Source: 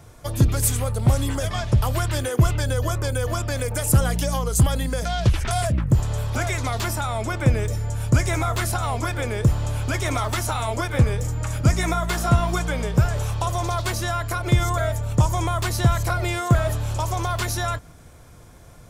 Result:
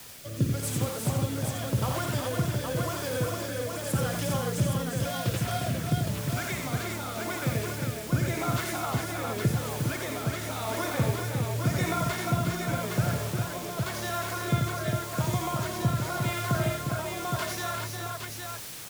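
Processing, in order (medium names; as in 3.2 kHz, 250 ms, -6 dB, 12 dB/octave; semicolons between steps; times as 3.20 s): high-pass 110 Hz 24 dB/octave; peaking EQ 12 kHz -7.5 dB 1.4 oct; word length cut 6-bit, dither triangular; rotary cabinet horn 0.9 Hz; on a send: multi-tap echo 55/87/355/407/814 ms -8.5/-5.5/-6.5/-5.5/-4.5 dB; on the sum: trim -6 dB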